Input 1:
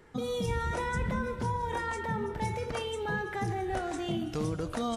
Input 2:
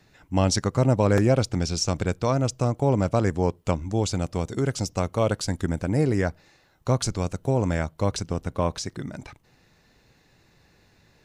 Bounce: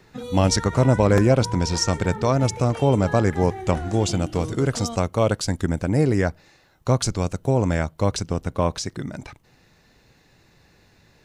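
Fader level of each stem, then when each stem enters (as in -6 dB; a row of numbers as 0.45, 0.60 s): -0.5, +3.0 dB; 0.00, 0.00 s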